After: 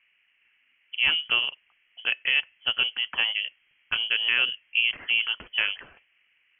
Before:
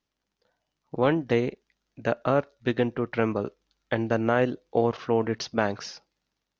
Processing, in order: band noise 210–1300 Hz -66 dBFS; frequency inversion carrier 3.2 kHz; trim -1 dB

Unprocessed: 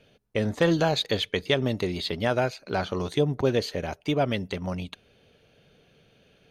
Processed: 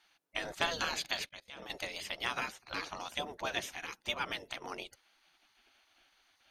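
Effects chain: spectral gate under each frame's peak -15 dB weak; 1.26–1.70 s: level held to a coarse grid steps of 24 dB

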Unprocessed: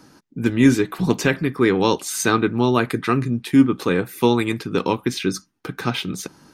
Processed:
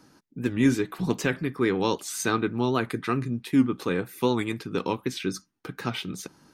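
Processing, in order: warped record 78 rpm, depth 100 cents; trim -7 dB

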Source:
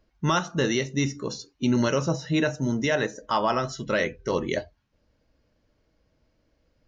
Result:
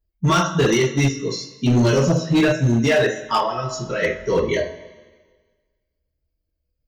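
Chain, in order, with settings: expander on every frequency bin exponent 1.5; de-hum 53.28 Hz, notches 34; 3.37–4.02 s: compression, threshold -32 dBFS, peak gain reduction 9.5 dB; two-slope reverb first 0.29 s, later 1.5 s, from -18 dB, DRR -6.5 dB; hard clipper -15 dBFS, distortion -14 dB; trim +3 dB

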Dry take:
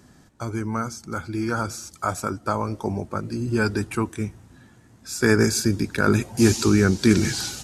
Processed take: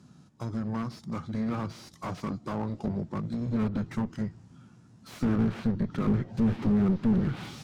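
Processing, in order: tracing distortion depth 0.49 ms; high-pass 110 Hz 6 dB/octave; formant shift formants -3 st; peaking EQ 160 Hz +11 dB 1.3 oct; one-sided clip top -22 dBFS, bottom -5.5 dBFS; low-pass that closes with the level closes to 2.1 kHz, closed at -16 dBFS; slew-rate limiter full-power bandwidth 57 Hz; trim -7.5 dB

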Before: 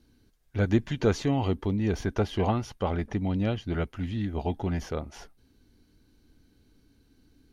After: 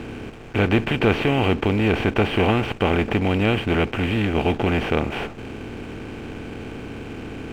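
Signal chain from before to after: spectral levelling over time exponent 0.4; resonant low-pass 2.6 kHz, resonance Q 5.2; hysteresis with a dead band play -40 dBFS; trim +1.5 dB

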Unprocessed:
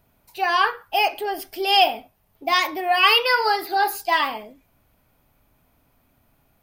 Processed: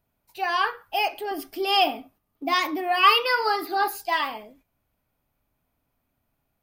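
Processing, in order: gate -52 dBFS, range -8 dB; 1.31–3.88 s: small resonant body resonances 280/1200 Hz, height 13 dB, ringing for 45 ms; trim -4.5 dB

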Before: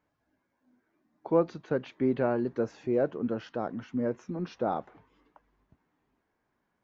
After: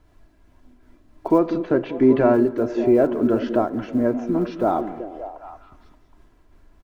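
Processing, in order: block-companded coder 7-bit; 1.38–2.34 s: low-pass 5 kHz 12 dB/octave; reverberation RT60 1.3 s, pre-delay 38 ms, DRR 17.5 dB; in parallel at -2.5 dB: peak limiter -23.5 dBFS, peak gain reduction 11.5 dB; on the sum: treble shelf 3.8 kHz -8.5 dB; added noise brown -60 dBFS; comb 3 ms, depth 47%; on a send: repeats whose band climbs or falls 192 ms, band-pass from 240 Hz, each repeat 0.7 oct, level -6.5 dB; on the sum: random flutter of the level, depth 55%; trim +9 dB

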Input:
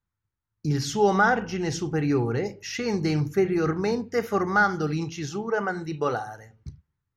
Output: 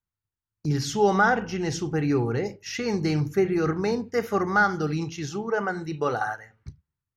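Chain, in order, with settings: gate -37 dBFS, range -7 dB; 6.21–6.68 s: peaking EQ 1.6 kHz +14 dB 2.2 oct

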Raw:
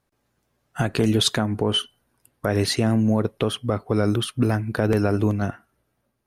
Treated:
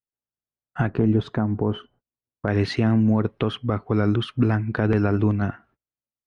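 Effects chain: low-pass 2 kHz 12 dB/octave, from 0.90 s 1 kHz, from 2.48 s 2.7 kHz; dynamic bell 560 Hz, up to -6 dB, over -37 dBFS, Q 1.7; gate -55 dBFS, range -31 dB; trim +1.5 dB

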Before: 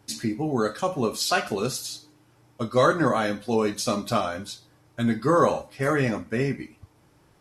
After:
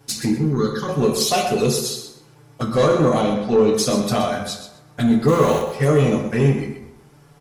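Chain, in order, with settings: treble shelf 4.6 kHz +3 dB; in parallel at 0 dB: peak limiter -15 dBFS, peak gain reduction 7.5 dB; 5.28–5.69 s: on the sum: small samples zeroed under -25 dBFS; touch-sensitive flanger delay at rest 7.6 ms, full sweep at -16 dBFS; saturation -14 dBFS, distortion -15 dB; 0.38–0.89 s: static phaser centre 2.5 kHz, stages 6; 3.21–3.74 s: distance through air 110 m; feedback delay 126 ms, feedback 19%, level -10.5 dB; reverberation RT60 0.95 s, pre-delay 3 ms, DRR 2.5 dB; trim +2 dB

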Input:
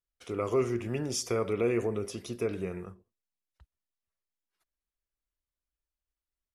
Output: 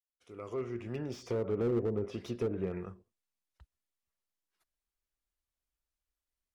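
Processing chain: fade-in on the opening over 1.76 s; low-pass that closes with the level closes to 550 Hz, closed at -26 dBFS; slew-rate limiter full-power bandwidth 17 Hz

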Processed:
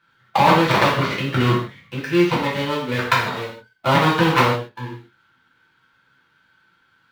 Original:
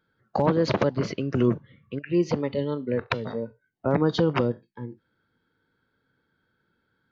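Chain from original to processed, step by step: dead-time distortion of 0.14 ms; high-order bell 1.8 kHz +13 dB 2.7 oct; gated-style reverb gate 190 ms falling, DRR -6.5 dB; trim -4 dB

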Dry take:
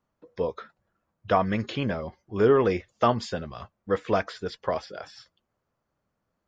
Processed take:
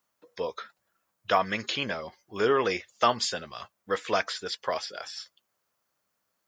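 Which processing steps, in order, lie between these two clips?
tilt EQ +4 dB/octave

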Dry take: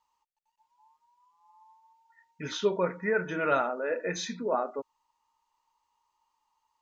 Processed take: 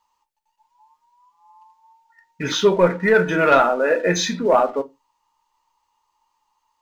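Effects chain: waveshaping leveller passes 1; on a send: reverberation RT60 0.15 s, pre-delay 6 ms, DRR 8 dB; on the sum: trim +8.5 dB

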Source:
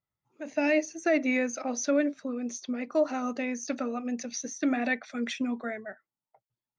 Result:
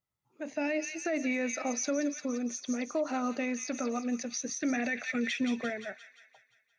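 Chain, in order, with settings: 4.49–5.70 s: graphic EQ 125/500/1000/2000 Hz +11/+4/-5/+8 dB; on a send: feedback echo behind a high-pass 174 ms, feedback 54%, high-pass 3 kHz, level -4.5 dB; on the sum: peak limiter -23 dBFS, peak gain reduction 12 dB

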